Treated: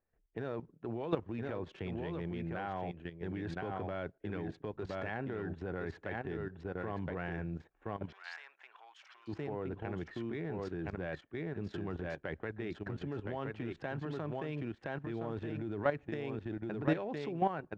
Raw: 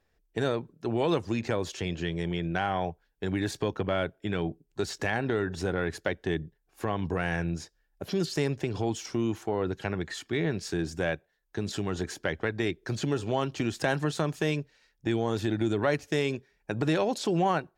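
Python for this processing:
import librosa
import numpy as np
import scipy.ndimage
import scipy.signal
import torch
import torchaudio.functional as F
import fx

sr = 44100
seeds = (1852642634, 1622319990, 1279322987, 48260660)

p1 = fx.wiener(x, sr, points=9)
p2 = p1 + fx.echo_single(p1, sr, ms=1018, db=-6.0, dry=0)
p3 = fx.level_steps(p2, sr, step_db=12)
p4 = fx.highpass(p3, sr, hz=1000.0, slope=24, at=(8.11, 9.27), fade=0.02)
p5 = fx.mod_noise(p4, sr, seeds[0], snr_db=34)
p6 = scipy.signal.sosfilt(scipy.signal.butter(2, 2500.0, 'lowpass', fs=sr, output='sos'), p5)
y = p6 * 10.0 ** (-2.5 / 20.0)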